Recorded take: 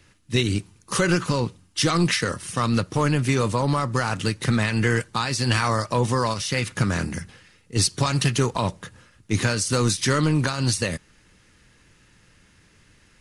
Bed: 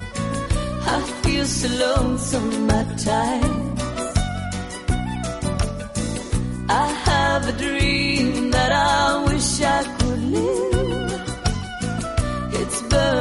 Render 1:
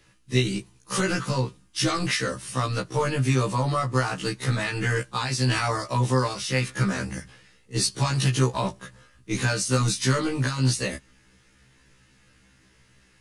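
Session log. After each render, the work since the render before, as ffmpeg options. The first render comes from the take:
-filter_complex "[0:a]acrossover=split=150[s0][s1];[s0]crystalizer=i=8:c=0[s2];[s2][s1]amix=inputs=2:normalize=0,afftfilt=real='re*1.73*eq(mod(b,3),0)':imag='im*1.73*eq(mod(b,3),0)':win_size=2048:overlap=0.75"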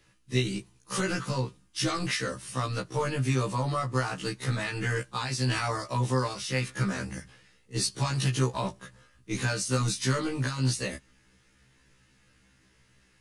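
-af "volume=0.596"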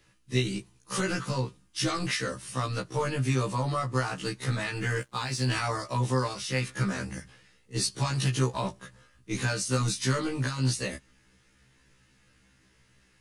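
-filter_complex "[0:a]asettb=1/sr,asplit=3[s0][s1][s2];[s0]atrim=end=4.764[s3];[s1]atrim=start=4.76:end=5.55,asetpts=PTS-STARTPTS,afade=t=in:d=0.004:c=qsin,afade=t=out:st=0.786:d=0.004:c=qsin,aeval=exprs='sgn(val(0))*max(abs(val(0))-0.00126,0)':c=same[s4];[s2]atrim=start=5.546[s5];[s3][s4]acrossfade=d=0.004:c1=hsin:c2=qsin[s6];[s6][s5]acrossfade=d=0.004:c1=qsin:c2=hsin"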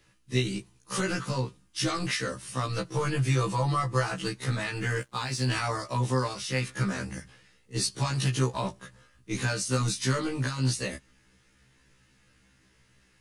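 -filter_complex "[0:a]asettb=1/sr,asplit=3[s0][s1][s2];[s0]atrim=end=2.684[s3];[s1]atrim=start=2.68:end=4.28,asetpts=PTS-STARTPTS,afade=t=in:d=0.004:c=qsin,afade=t=out:st=1.596:d=0.004:c=qsin,aecho=1:1:6:0.65,atrim=end_sample=70560[s4];[s2]atrim=start=4.276[s5];[s3][s4]acrossfade=d=0.004:c1=hsin:c2=qsin[s6];[s6][s5]acrossfade=d=0.004:c1=qsin:c2=hsin"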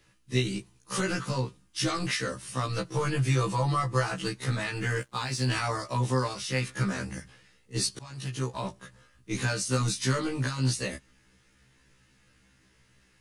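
-filter_complex "[0:a]asplit=2[s0][s1];[s0]atrim=end=7.99,asetpts=PTS-STARTPTS,afade=t=out:st=7.986:d=0.004:c=hsin:silence=0.0794328[s2];[s1]atrim=start=7.99,asetpts=PTS-STARTPTS,afade=t=in:d=1.32:c=qsin:silence=0.0794328[s3];[s2][s3]concat=n=2:v=0:a=1"

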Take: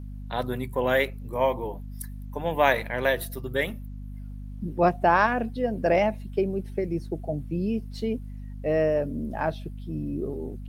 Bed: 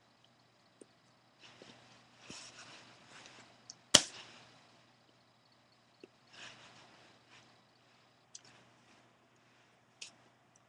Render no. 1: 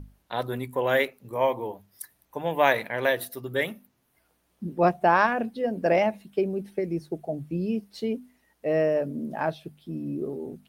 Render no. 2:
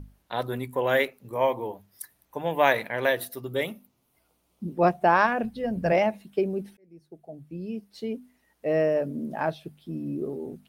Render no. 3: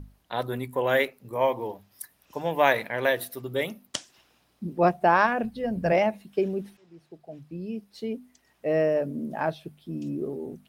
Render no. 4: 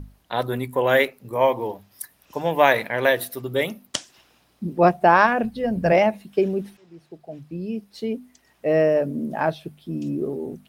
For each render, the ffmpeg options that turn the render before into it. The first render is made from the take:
-af "bandreject=f=50:t=h:w=6,bandreject=f=100:t=h:w=6,bandreject=f=150:t=h:w=6,bandreject=f=200:t=h:w=6,bandreject=f=250:t=h:w=6"
-filter_complex "[0:a]asettb=1/sr,asplit=3[s0][s1][s2];[s0]atrim=end=3.474[s3];[s1]atrim=start=3.47:end=4.75,asetpts=PTS-STARTPTS,afade=t=in:d=0.004:c=qsin,afade=t=out:st=1.276:d=0.004:c=qsin,equalizer=f=1700:w=4.3:g=-11[s4];[s2]atrim=start=4.746[s5];[s3][s4]acrossfade=d=0.004:c1=hsin:c2=qsin[s6];[s6][s5]acrossfade=d=0.004:c1=qsin:c2=hsin,asplit=3[s7][s8][s9];[s7]afade=t=out:st=5.43:d=0.02[s10];[s8]asubboost=boost=11.5:cutoff=100,afade=t=in:st=5.43:d=0.02,afade=t=out:st=5.91:d=0.02[s11];[s9]afade=t=in:st=5.91:d=0.02[s12];[s10][s11][s12]amix=inputs=3:normalize=0,asplit=2[s13][s14];[s13]atrim=end=6.77,asetpts=PTS-STARTPTS,afade=t=out:st=6.766:d=0.004:c=hsin[s15];[s14]atrim=start=6.77,asetpts=PTS-STARTPTS,afade=t=in:d=1.94[s16];[s15][s16]concat=n=2:v=0:a=1"
-filter_complex "[1:a]volume=0.335[s0];[0:a][s0]amix=inputs=2:normalize=0"
-af "volume=1.78,alimiter=limit=0.794:level=0:latency=1"

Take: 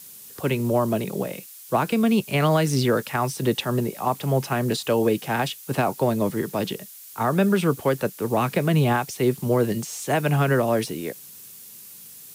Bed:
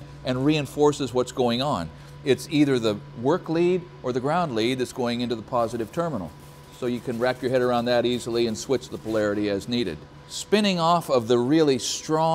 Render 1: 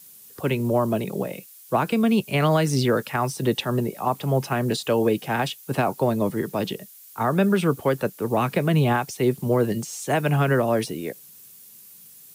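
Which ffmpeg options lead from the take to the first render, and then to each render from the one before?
-af "afftdn=nr=6:nf=-44"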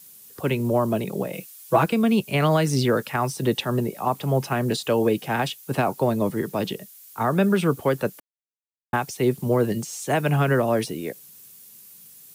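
-filter_complex "[0:a]asettb=1/sr,asplit=3[s0][s1][s2];[s0]atrim=end=1.334[s3];[s1]atrim=start=1.33:end=1.86,asetpts=PTS-STARTPTS,afade=t=in:d=0.004:c=qsin,afade=t=out:st=0.526:d=0.004:c=qsin,aecho=1:1:6.1:0.98,atrim=end_sample=23373[s4];[s2]atrim=start=1.856[s5];[s3][s4]acrossfade=d=0.004:c1=hsin:c2=qsin[s6];[s6][s5]acrossfade=d=0.004:c1=qsin:c2=hsin,asplit=3[s7][s8][s9];[s7]atrim=end=8.2,asetpts=PTS-STARTPTS,afade=t=out:st=8.196:d=0.004:c=hsin[s10];[s8]atrim=start=8.2:end=8.93,asetpts=PTS-STARTPTS,volume=0[s11];[s9]atrim=start=8.93,asetpts=PTS-STARTPTS,afade=t=in:d=0.004:c=hsin[s12];[s10][s11][s12]concat=n=3:v=0:a=1"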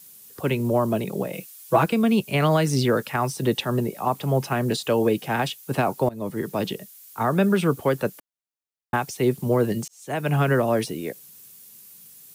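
-filter_complex "[0:a]asplit=3[s0][s1][s2];[s0]atrim=end=6.09,asetpts=PTS-STARTPTS,afade=t=out:st=6.086:d=0.004:c=hsin:silence=0.0841395[s3];[s1]atrim=start=6.09:end=9.88,asetpts=PTS-STARTPTS,afade=t=in:d=0.54:c=qsin:silence=0.0841395,afade=t=out:st=3.786:d=0.004:c=hsin[s4];[s2]atrim=start=9.88,asetpts=PTS-STARTPTS,afade=t=in:d=0.5[s5];[s3][s4][s5]concat=n=3:v=0:a=1"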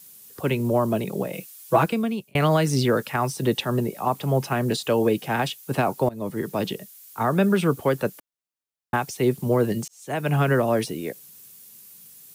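-filter_complex "[0:a]asplit=2[s0][s1];[s0]atrim=end=2.35,asetpts=PTS-STARTPTS,afade=t=out:st=1.82:d=0.53[s2];[s1]atrim=start=2.35,asetpts=PTS-STARTPTS,afade=t=in:d=0.004:c=hsin[s3];[s2][s3]concat=n=2:v=0:a=1"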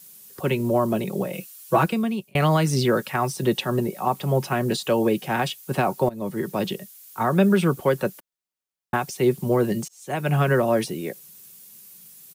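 -af "aecho=1:1:5.4:0.34"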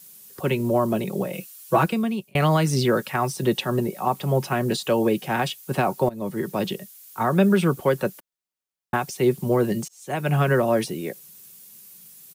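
-af anull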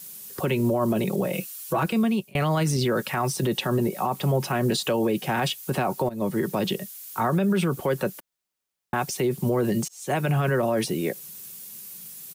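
-filter_complex "[0:a]asplit=2[s0][s1];[s1]acompressor=threshold=0.0282:ratio=6,volume=0.944[s2];[s0][s2]amix=inputs=2:normalize=0,alimiter=limit=0.168:level=0:latency=1:release=36"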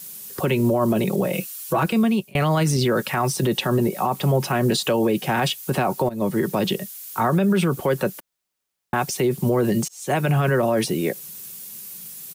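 -af "volume=1.5"

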